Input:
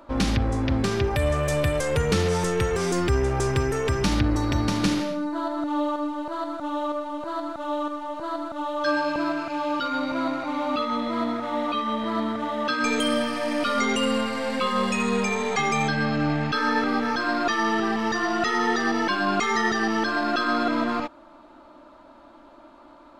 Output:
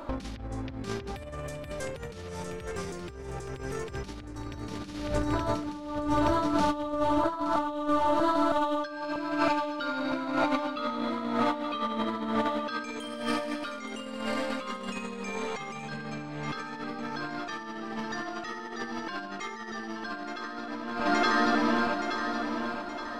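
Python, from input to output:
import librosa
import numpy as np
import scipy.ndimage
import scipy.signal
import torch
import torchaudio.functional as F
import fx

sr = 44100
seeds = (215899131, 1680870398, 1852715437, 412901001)

p1 = x + fx.echo_feedback(x, sr, ms=872, feedback_pct=45, wet_db=-9.0, dry=0)
p2 = fx.dynamic_eq(p1, sr, hz=1000.0, q=1.6, threshold_db=-43.0, ratio=4.0, max_db=7, at=(7.18, 7.68))
y = fx.over_compress(p2, sr, threshold_db=-30.0, ratio=-0.5)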